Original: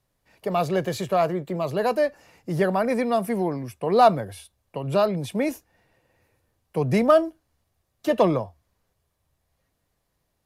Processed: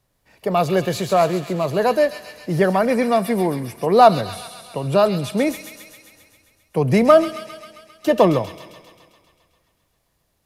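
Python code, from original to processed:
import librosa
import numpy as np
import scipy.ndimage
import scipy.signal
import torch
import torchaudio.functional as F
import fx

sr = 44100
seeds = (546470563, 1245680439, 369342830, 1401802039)

y = fx.echo_wet_highpass(x, sr, ms=133, feedback_pct=68, hz=2700.0, wet_db=-4.0)
y = fx.rev_schroeder(y, sr, rt60_s=1.9, comb_ms=28, drr_db=20.0)
y = F.gain(torch.from_numpy(y), 5.0).numpy()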